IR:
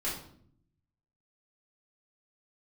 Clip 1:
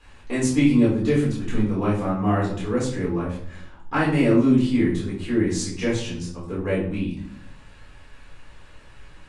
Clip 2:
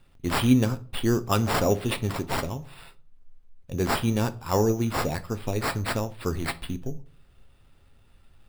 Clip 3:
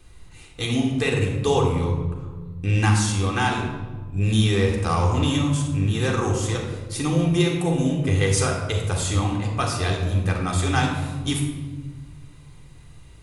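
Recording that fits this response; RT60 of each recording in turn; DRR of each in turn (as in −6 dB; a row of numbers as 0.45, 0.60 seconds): 1; 0.60, 0.45, 1.4 seconds; −8.0, 10.5, −1.0 decibels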